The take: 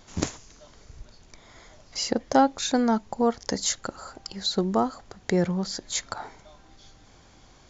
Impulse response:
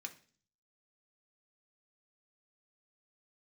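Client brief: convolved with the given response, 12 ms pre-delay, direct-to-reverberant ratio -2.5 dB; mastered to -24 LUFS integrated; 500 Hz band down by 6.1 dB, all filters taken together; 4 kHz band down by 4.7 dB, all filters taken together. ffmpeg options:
-filter_complex "[0:a]equalizer=f=500:t=o:g=-7.5,equalizer=f=4000:t=o:g=-5.5,asplit=2[s0][s1];[1:a]atrim=start_sample=2205,adelay=12[s2];[s1][s2]afir=irnorm=-1:irlink=0,volume=1.88[s3];[s0][s3]amix=inputs=2:normalize=0,volume=1.19"

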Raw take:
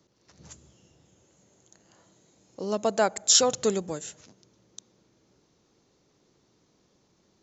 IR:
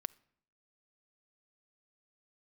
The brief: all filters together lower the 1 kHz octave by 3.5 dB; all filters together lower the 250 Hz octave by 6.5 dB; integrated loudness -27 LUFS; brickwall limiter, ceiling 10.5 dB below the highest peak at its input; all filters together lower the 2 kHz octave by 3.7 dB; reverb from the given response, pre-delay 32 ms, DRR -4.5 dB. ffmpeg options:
-filter_complex "[0:a]equalizer=f=250:t=o:g=-8.5,equalizer=f=1000:t=o:g=-3.5,equalizer=f=2000:t=o:g=-3.5,alimiter=limit=0.133:level=0:latency=1,asplit=2[s0][s1];[1:a]atrim=start_sample=2205,adelay=32[s2];[s1][s2]afir=irnorm=-1:irlink=0,volume=2.24[s3];[s0][s3]amix=inputs=2:normalize=0,volume=0.75"

